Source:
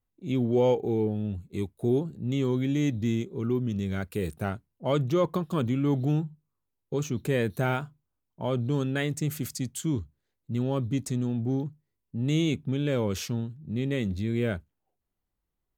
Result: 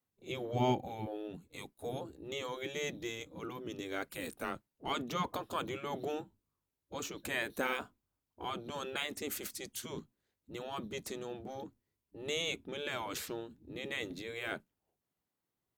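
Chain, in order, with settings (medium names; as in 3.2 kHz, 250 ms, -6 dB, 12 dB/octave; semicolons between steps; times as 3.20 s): 4.39–4.89 s: frequency shift -70 Hz; spectral gate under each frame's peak -10 dB weak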